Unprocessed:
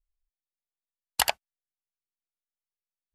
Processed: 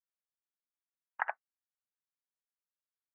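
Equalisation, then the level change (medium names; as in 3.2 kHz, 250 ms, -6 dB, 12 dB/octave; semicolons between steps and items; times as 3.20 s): high-pass 1.2 kHz 12 dB/octave; steep low-pass 1.8 kHz 48 dB/octave; 0.0 dB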